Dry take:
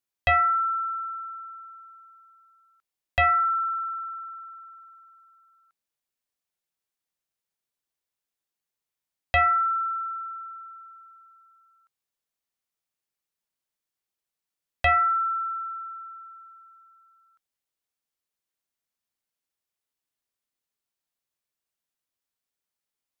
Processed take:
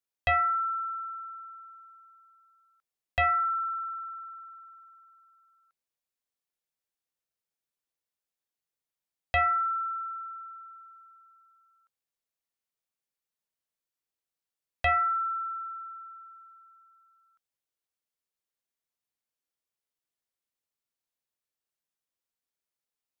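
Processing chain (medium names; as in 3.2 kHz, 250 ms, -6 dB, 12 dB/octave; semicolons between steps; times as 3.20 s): peaking EQ 540 Hz +6.5 dB 0.31 oct; band-stop 560 Hz, Q 12; trim -4.5 dB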